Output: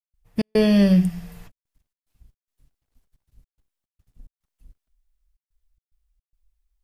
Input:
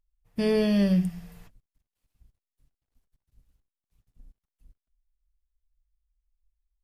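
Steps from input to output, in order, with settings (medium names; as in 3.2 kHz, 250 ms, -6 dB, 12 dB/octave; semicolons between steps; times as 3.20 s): trance gate ".xx.xxxxxxx.xx" 109 bpm -60 dB; trim +6.5 dB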